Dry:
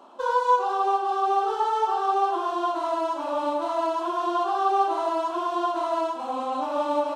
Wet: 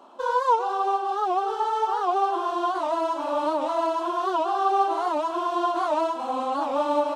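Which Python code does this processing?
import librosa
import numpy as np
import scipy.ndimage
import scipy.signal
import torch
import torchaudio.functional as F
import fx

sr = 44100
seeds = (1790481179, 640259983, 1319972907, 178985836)

y = fx.rider(x, sr, range_db=10, speed_s=2.0)
y = fx.record_warp(y, sr, rpm=78.0, depth_cents=160.0)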